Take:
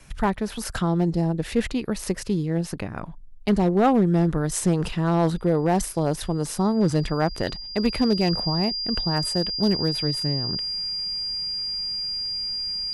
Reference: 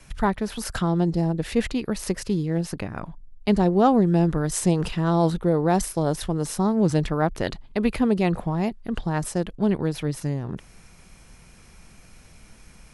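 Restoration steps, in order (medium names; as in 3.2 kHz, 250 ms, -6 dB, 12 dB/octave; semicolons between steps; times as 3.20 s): clip repair -12.5 dBFS; band-stop 4.8 kHz, Q 30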